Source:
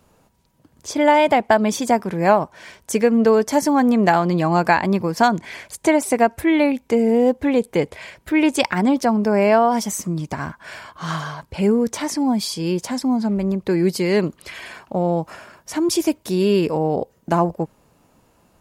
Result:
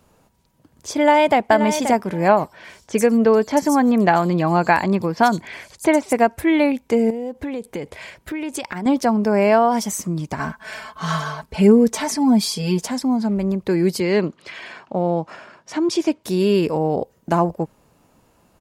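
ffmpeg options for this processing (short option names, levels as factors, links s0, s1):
-filter_complex "[0:a]asplit=2[s0][s1];[s1]afade=t=in:st=0.98:d=0.01,afade=t=out:st=1.49:d=0.01,aecho=0:1:530|1060:0.354813|0.053222[s2];[s0][s2]amix=inputs=2:normalize=0,asettb=1/sr,asplit=3[s3][s4][s5];[s3]atrim=end=2.284[s6];[s4]atrim=start=2.28:end=6.13,asetpts=PTS-STARTPTS,afade=t=in:d=0.004:c=qsin,afade=t=out:st=3.846:d=0.004:c=qsin,acrossover=split=5100[s7][s8];[s8]adelay=90[s9];[s7][s9]amix=inputs=2:normalize=0,atrim=end_sample=169785[s10];[s5]atrim=start=6.126[s11];[s6][s10]acrossfade=d=0.004:c1=hsin:c2=qsin[s12];[s12][s11]acrossfade=d=0.004:c1=qsin:c2=hsin,asettb=1/sr,asplit=3[s13][s14][s15];[s13]atrim=end=7.104[s16];[s14]atrim=start=7.1:end=8.86,asetpts=PTS-STARTPTS,afade=t=in:d=0.004:c=qsin,afade=t=out:st=1.756:d=0.004:c=qsin,acompressor=threshold=0.0708:ratio=12:attack=3.2:release=140:knee=1:detection=peak[s17];[s15]atrim=start=8.856[s18];[s16][s17]acrossfade=d=0.004:c1=hsin:c2=qsin[s19];[s19][s18]acrossfade=d=0.004:c1=qsin:c2=hsin,asettb=1/sr,asplit=3[s20][s21][s22];[s20]atrim=end=10.394[s23];[s21]atrim=start=10.39:end=12.88,asetpts=PTS-STARTPTS,afade=t=in:d=0.004:c=qsin,afade=t=out:st=2.486:d=0.004:c=qsin,aecho=1:1:4.6:0.92,atrim=end_sample=109809[s24];[s22]atrim=start=12.876[s25];[s23][s24]acrossfade=d=0.004:c1=hsin:c2=qsin[s26];[s26][s25]acrossfade=d=0.004:c1=qsin:c2=hsin,asettb=1/sr,asplit=3[s27][s28][s29];[s27]atrim=end=14.004[s30];[s28]atrim=start=14:end=16.24,asetpts=PTS-STARTPTS,afade=t=in:d=0.004:c=qsin,afade=t=out:st=2.236:d=0.004:c=qsin,highpass=140,lowpass=5200[s31];[s29]atrim=start=16.236[s32];[s30][s31]acrossfade=d=0.004:c1=hsin:c2=qsin[s33];[s33][s32]acrossfade=d=0.004:c1=qsin:c2=hsin"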